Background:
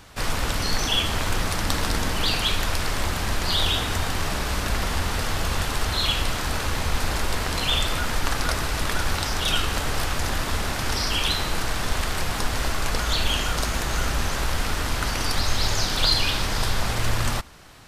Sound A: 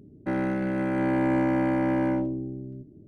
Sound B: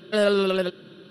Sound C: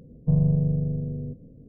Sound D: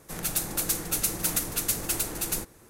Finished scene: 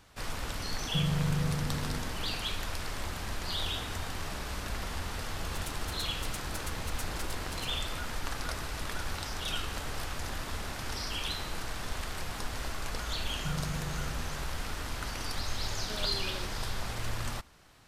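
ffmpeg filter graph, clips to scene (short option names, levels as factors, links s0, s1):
-filter_complex "[3:a]asplit=2[s0][s1];[0:a]volume=0.266[s2];[s0]alimiter=limit=0.141:level=0:latency=1:release=71[s3];[4:a]adynamicsmooth=sensitivity=7.5:basefreq=1700[s4];[2:a]acompressor=threshold=0.0631:ratio=6:attack=3.2:release=140:knee=1:detection=peak[s5];[s3]atrim=end=1.68,asetpts=PTS-STARTPTS,volume=0.501,afade=t=in:d=0.004:c=hsin,afade=t=out:st=1.676:d=0.004:c=hsin,adelay=670[s6];[s4]atrim=end=2.69,asetpts=PTS-STARTPTS,volume=0.282,afade=t=in:d=0.004:c=hsin,afade=t=out:st=2.686:d=0.004:c=hsin,adelay=5300[s7];[s1]atrim=end=1.68,asetpts=PTS-STARTPTS,volume=0.158,afade=t=in:d=0.004:c=hsin,afade=t=out:st=1.676:d=0.004:c=hsin,adelay=13170[s8];[s5]atrim=end=1.1,asetpts=PTS-STARTPTS,volume=0.178,afade=t=in:d=0.004:c=hsin,afade=t=out:st=1.096:d=0.004:c=hsin,adelay=15770[s9];[s2][s6][s7][s8][s9]amix=inputs=5:normalize=0"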